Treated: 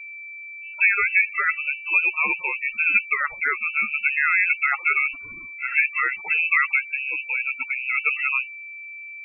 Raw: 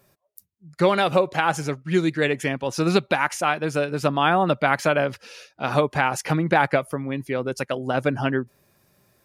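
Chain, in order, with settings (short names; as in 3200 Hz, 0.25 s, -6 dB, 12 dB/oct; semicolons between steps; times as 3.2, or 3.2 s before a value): whine 470 Hz -35 dBFS; inverted band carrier 2800 Hz; loudest bins only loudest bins 16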